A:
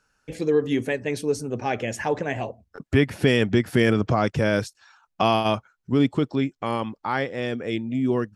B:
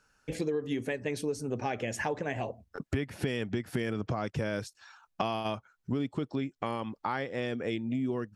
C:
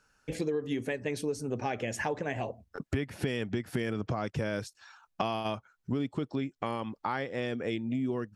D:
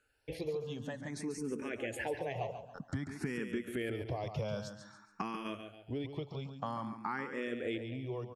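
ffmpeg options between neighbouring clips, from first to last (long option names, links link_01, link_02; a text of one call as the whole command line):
ffmpeg -i in.wav -af "acompressor=threshold=-29dB:ratio=6" out.wav
ffmpeg -i in.wav -af anull out.wav
ffmpeg -i in.wav -filter_complex "[0:a]aecho=1:1:140|280|420|560:0.376|0.143|0.0543|0.0206,asplit=2[link_01][link_02];[link_02]afreqshift=0.52[link_03];[link_01][link_03]amix=inputs=2:normalize=1,volume=-3dB" out.wav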